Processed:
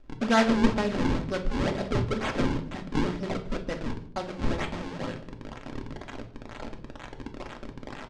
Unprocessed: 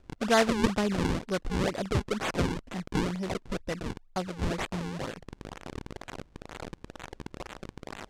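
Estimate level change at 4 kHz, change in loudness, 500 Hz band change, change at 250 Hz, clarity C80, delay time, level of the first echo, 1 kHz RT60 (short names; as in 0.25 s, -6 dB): -0.5 dB, +1.5 dB, +0.5 dB, +3.0 dB, 15.5 dB, 0.151 s, -21.5 dB, 0.50 s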